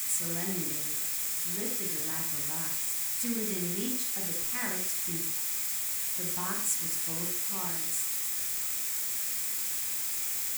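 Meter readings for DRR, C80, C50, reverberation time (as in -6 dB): 2.0 dB, 10.5 dB, 6.0 dB, 0.50 s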